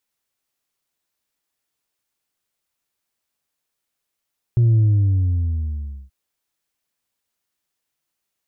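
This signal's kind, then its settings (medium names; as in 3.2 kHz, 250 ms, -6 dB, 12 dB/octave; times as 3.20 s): sub drop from 120 Hz, over 1.53 s, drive 2 dB, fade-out 1.34 s, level -12 dB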